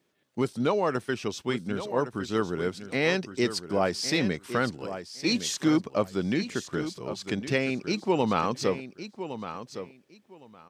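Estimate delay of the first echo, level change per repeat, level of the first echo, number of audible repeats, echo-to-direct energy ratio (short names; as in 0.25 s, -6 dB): 1.111 s, -15.0 dB, -11.0 dB, 2, -11.0 dB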